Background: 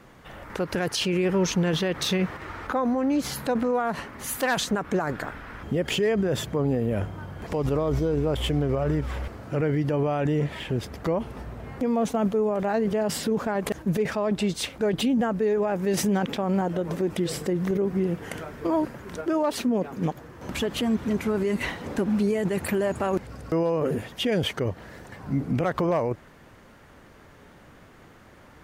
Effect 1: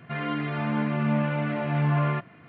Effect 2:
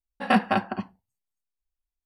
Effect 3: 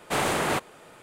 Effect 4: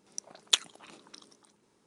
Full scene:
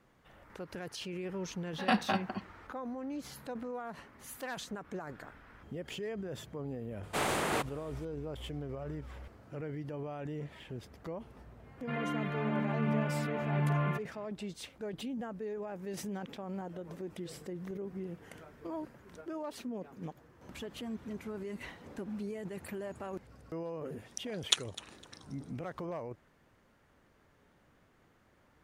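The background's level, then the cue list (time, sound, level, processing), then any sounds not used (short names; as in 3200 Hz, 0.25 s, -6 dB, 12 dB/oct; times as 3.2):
background -16 dB
1.58 add 2 -8.5 dB + bell 4000 Hz +8 dB
7.03 add 3 -6.5 dB
11.78 add 1 -7 dB
23.99 add 4 -3.5 dB + feedback echo 0.254 s, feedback 25%, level -18.5 dB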